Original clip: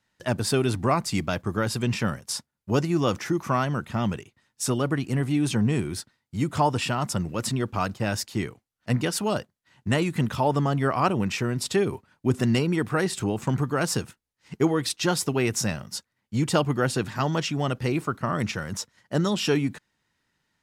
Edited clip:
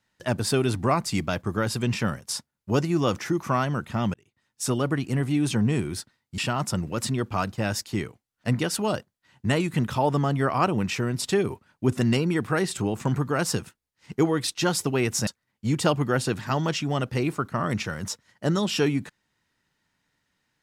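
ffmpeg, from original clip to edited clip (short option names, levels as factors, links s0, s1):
-filter_complex "[0:a]asplit=4[s0][s1][s2][s3];[s0]atrim=end=4.14,asetpts=PTS-STARTPTS,afade=t=out:st=4.136:d=0.004:c=hsin[s4];[s1]atrim=start=4.14:end=6.382,asetpts=PTS-STARTPTS,afade=t=in:d=0.57[s5];[s2]atrim=start=6.798:end=15.692[s6];[s3]atrim=start=15.958[s7];[s4][s5]concat=n=2:v=0:a=1[s8];[s8][s6]acrossfade=d=0.004:c1=hsin:c2=hsin[s9];[s9][s7]acrossfade=d=0.004:c1=hsin:c2=hsin"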